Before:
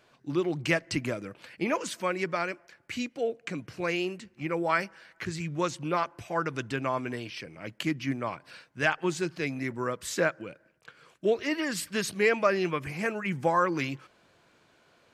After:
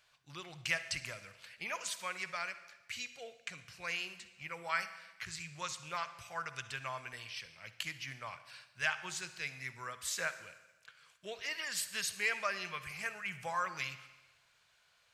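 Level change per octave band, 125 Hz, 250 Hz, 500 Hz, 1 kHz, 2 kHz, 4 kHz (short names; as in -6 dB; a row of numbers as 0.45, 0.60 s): -16.5, -24.5, -18.5, -10.0, -5.5, -2.5 dB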